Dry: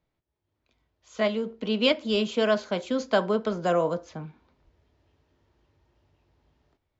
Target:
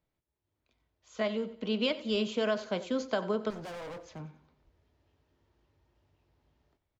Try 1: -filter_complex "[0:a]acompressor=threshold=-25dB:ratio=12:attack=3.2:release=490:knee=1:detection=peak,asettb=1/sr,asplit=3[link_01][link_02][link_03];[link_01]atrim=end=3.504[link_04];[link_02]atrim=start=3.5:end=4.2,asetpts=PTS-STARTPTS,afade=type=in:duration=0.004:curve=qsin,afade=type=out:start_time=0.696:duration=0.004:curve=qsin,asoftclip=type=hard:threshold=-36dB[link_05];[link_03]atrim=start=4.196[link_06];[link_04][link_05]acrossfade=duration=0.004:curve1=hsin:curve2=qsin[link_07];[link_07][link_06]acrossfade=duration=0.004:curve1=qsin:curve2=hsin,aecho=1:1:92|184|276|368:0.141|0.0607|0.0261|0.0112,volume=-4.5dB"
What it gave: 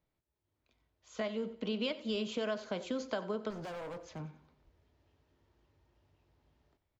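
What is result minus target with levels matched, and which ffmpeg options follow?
downward compressor: peak gain reduction +6 dB
-filter_complex "[0:a]acompressor=threshold=-18.5dB:ratio=12:attack=3.2:release=490:knee=1:detection=peak,asettb=1/sr,asplit=3[link_01][link_02][link_03];[link_01]atrim=end=3.504[link_04];[link_02]atrim=start=3.5:end=4.2,asetpts=PTS-STARTPTS,afade=type=in:duration=0.004:curve=qsin,afade=type=out:start_time=0.696:duration=0.004:curve=qsin,asoftclip=type=hard:threshold=-36dB[link_05];[link_03]atrim=start=4.196[link_06];[link_04][link_05]acrossfade=duration=0.004:curve1=hsin:curve2=qsin[link_07];[link_07][link_06]acrossfade=duration=0.004:curve1=qsin:curve2=hsin,aecho=1:1:92|184|276|368:0.141|0.0607|0.0261|0.0112,volume=-4.5dB"

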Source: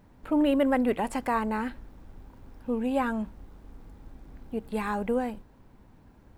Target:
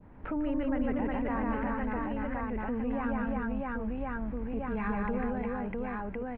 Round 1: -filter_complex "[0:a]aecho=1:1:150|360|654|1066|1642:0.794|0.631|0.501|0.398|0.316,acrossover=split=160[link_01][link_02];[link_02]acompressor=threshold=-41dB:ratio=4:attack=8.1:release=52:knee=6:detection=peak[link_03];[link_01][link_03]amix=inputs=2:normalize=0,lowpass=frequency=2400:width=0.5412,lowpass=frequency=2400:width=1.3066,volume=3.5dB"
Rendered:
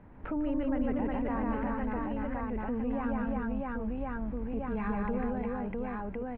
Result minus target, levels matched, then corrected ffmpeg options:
2,000 Hz band −3.0 dB
-filter_complex "[0:a]aecho=1:1:150|360|654|1066|1642:0.794|0.631|0.501|0.398|0.316,acrossover=split=160[link_01][link_02];[link_02]acompressor=threshold=-41dB:ratio=4:attack=8.1:release=52:knee=6:detection=peak,adynamicequalizer=threshold=0.00178:dfrequency=1900:dqfactor=0.98:tfrequency=1900:tqfactor=0.98:attack=5:release=100:ratio=0.438:range=2:mode=boostabove:tftype=bell[link_03];[link_01][link_03]amix=inputs=2:normalize=0,lowpass=frequency=2400:width=0.5412,lowpass=frequency=2400:width=1.3066,volume=3.5dB"

